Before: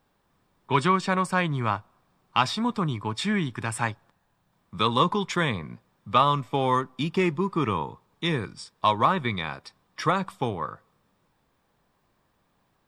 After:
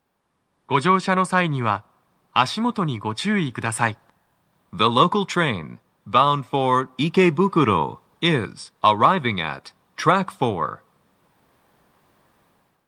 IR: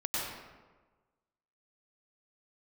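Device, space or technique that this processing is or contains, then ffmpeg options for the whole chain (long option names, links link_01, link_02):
video call: -af "highpass=frequency=110:poles=1,dynaudnorm=framelen=480:gausssize=3:maxgain=12.5dB,volume=-1dB" -ar 48000 -c:a libopus -b:a 32k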